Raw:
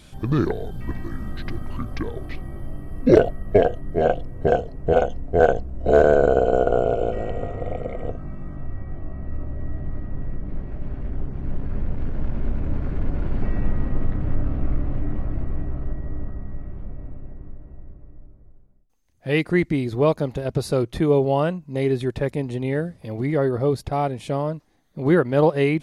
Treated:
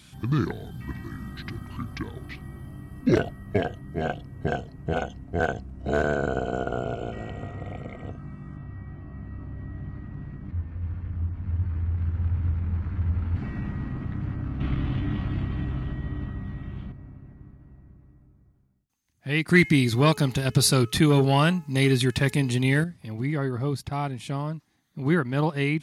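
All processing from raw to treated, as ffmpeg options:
-filter_complex "[0:a]asettb=1/sr,asplit=3[s0][s1][s2];[s0]atrim=end=10.514[s3];[s1]atrim=start=10.51:end=13.36,asetpts=PTS-STARTPTS,afade=t=in:d=0.004:c=qsin,afade=t=out:st=2.846:d=0.004:c=qsin,lowpass=f=2700:p=1,asplit=2[s4][s5];[s5]adelay=17,volume=0.224[s6];[s4][s6]amix=inputs=2:normalize=0,atrim=end_sample=125685,afreqshift=-100[s7];[s2]atrim=start=13.356[s8];[s3][s7]acrossfade=d=0.004:c1=hsin:c2=qsin[s9];[s9][s8]acrossfade=d=0.004:c1=qsin:c2=hsin,asettb=1/sr,asplit=3[s10][s11][s12];[s10]atrim=end=14.604[s13];[s11]atrim=start=14.6:end=16.92,asetpts=PTS-STARTPTS,afade=t=in:d=0.004:c=qsin,afade=t=out:st=2.316:d=0.004:c=qsin,acontrast=54,equalizer=f=3300:t=o:w=0.71:g=14[s14];[s12]atrim=start=16.916[s15];[s13][s14]acrossfade=d=0.004:c1=hsin:c2=qsin[s16];[s16][s15]acrossfade=d=0.004:c1=qsin:c2=hsin,asettb=1/sr,asplit=3[s17][s18][s19];[s17]atrim=end=19.484[s20];[s18]atrim=start=19.48:end=22.84,asetpts=PTS-STARTPTS,afade=t=in:d=0.004:c=qsin,afade=t=out:st=3.356:d=0.004:c=qsin,highshelf=f=2400:g=9.5,bandreject=f=426.9:t=h:w=4,bandreject=f=853.8:t=h:w=4,bandreject=f=1280.7:t=h:w=4,bandreject=f=1707.6:t=h:w=4,bandreject=f=2134.5:t=h:w=4,bandreject=f=2561.4:t=h:w=4,bandreject=f=2988.3:t=h:w=4,acontrast=61[s21];[s19]atrim=start=22.836[s22];[s20][s21]acrossfade=d=0.004:c1=hsin:c2=qsin[s23];[s23][s22]acrossfade=d=0.004:c1=qsin:c2=hsin,highpass=91,equalizer=f=520:w=1.2:g=-14"

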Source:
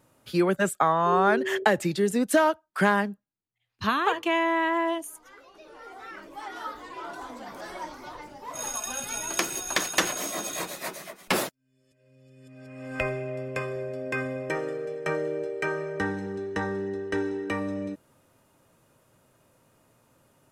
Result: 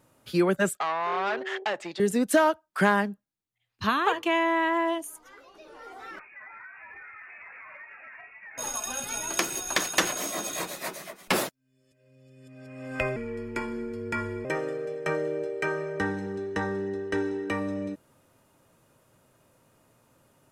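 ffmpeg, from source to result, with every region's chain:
-filter_complex "[0:a]asettb=1/sr,asplit=3[s0][s1][s2];[s0]atrim=end=0.774[s3];[s1]atrim=start=0.77:end=2,asetpts=PTS-STARTPTS,afade=t=in:d=0.004:c=qsin,afade=t=out:st=1.226:d=0.004:c=qsin,aeval=exprs='(tanh(12.6*val(0)+0.55)-tanh(0.55))/12.6':c=same,highpass=440,lowpass=4900[s4];[s2]atrim=start=1.996[s5];[s3][s4]acrossfade=d=0.004:c1=hsin:c2=qsin[s6];[s6][s5]acrossfade=d=0.004:c1=qsin:c2=hsin,asettb=1/sr,asplit=3[s7][s8][s9];[s7]atrim=end=6.194[s10];[s8]atrim=start=6.19:end=8.58,asetpts=PTS-STARTPTS,afade=t=in:d=0.004:c=qsin,afade=t=out:st=2.386:d=0.004:c=qsin,lowshelf=f=460:g=-10.5,lowpass=f=2400:t=q:w=0.5098,lowpass=f=2400:t=q:w=0.6013,lowpass=f=2400:t=q:w=0.9,lowpass=f=2400:t=q:w=2.563,afreqshift=-2800,acompressor=threshold=0.00891:ratio=12:attack=3.2:release=140:knee=1:detection=peak[s11];[s9]atrim=start=8.576[s12];[s10][s11]acrossfade=d=0.004:c1=hsin:c2=qsin[s13];[s13][s12]acrossfade=d=0.004:c1=qsin:c2=hsin,asettb=1/sr,asplit=3[s14][s15][s16];[s14]atrim=end=13.164[s17];[s15]atrim=start=13.16:end=14.45,asetpts=PTS-STARTPTS,afade=t=in:d=0.004:c=qsin,afade=t=out:st=1.286:d=0.004:c=qsin,highpass=250,afreqshift=-160[s18];[s16]atrim=start=14.446[s19];[s17][s18]acrossfade=d=0.004:c1=hsin:c2=qsin[s20];[s20][s19]acrossfade=d=0.004:c1=qsin:c2=hsin"

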